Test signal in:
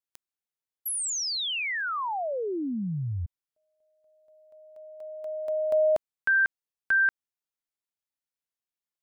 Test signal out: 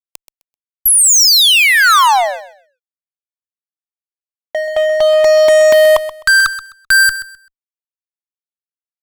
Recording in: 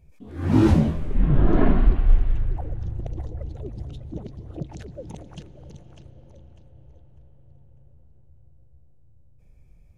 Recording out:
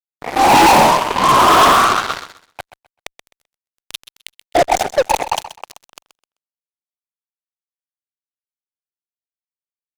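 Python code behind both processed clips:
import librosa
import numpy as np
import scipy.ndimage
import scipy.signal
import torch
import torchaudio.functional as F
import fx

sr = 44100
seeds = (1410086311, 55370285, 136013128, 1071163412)

p1 = fx.peak_eq(x, sr, hz=1800.0, db=-14.5, octaves=1.5)
p2 = fx.filter_lfo_highpass(p1, sr, shape='saw_up', hz=0.22, low_hz=700.0, high_hz=2900.0, q=6.5)
p3 = fx.fuzz(p2, sr, gain_db=43.0, gate_db=-48.0)
p4 = p3 + fx.echo_feedback(p3, sr, ms=129, feedback_pct=22, wet_db=-13.5, dry=0)
y = p4 * 10.0 ** (5.5 / 20.0)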